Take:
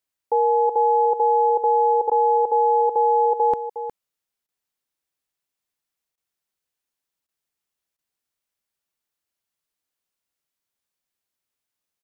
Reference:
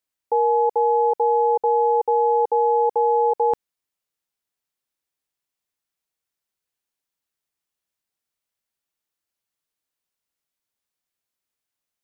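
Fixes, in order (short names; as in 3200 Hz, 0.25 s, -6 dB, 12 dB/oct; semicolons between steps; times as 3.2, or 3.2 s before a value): interpolate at 2.1/4.47/6.16/7.27/7.97, 14 ms; inverse comb 0.361 s -10.5 dB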